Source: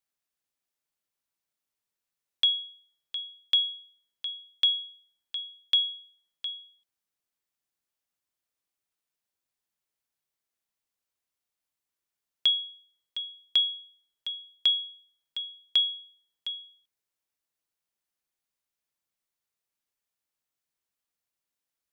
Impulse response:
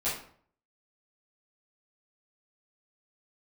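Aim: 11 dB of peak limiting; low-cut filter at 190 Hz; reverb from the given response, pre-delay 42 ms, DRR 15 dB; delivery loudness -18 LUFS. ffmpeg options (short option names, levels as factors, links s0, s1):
-filter_complex "[0:a]highpass=190,alimiter=level_in=1.12:limit=0.0631:level=0:latency=1,volume=0.891,asplit=2[s0][s1];[1:a]atrim=start_sample=2205,adelay=42[s2];[s1][s2]afir=irnorm=-1:irlink=0,volume=0.0794[s3];[s0][s3]amix=inputs=2:normalize=0,volume=5.31"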